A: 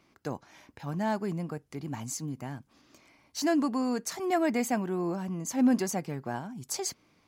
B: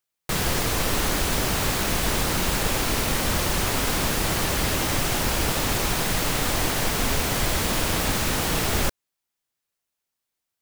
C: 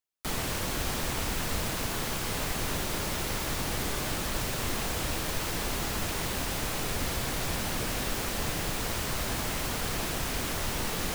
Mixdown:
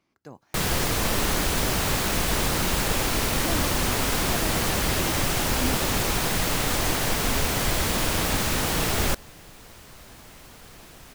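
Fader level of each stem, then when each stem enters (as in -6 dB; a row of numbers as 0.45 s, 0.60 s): -8.5 dB, -0.5 dB, -15.0 dB; 0.00 s, 0.25 s, 0.80 s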